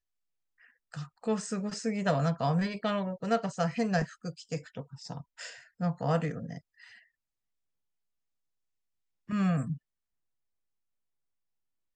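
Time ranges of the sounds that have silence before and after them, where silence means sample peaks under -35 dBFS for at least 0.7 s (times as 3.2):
0.94–6.58
9.3–9.74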